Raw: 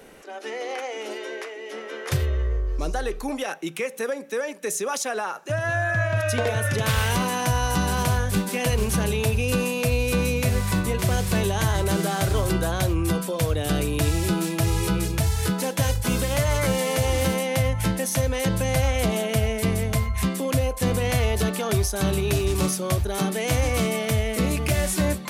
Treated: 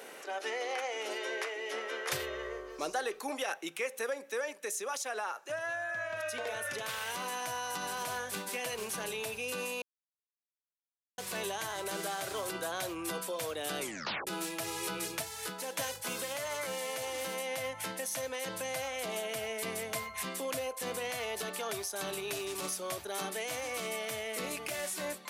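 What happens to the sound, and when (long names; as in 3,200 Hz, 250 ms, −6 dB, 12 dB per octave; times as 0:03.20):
0:09.82–0:11.18: silence
0:13.80: tape stop 0.47 s
0:15.13–0:15.79: duck −8 dB, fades 0.12 s
whole clip: Bessel high-pass filter 550 Hz, order 2; brickwall limiter −19 dBFS; speech leveller 0.5 s; level −6.5 dB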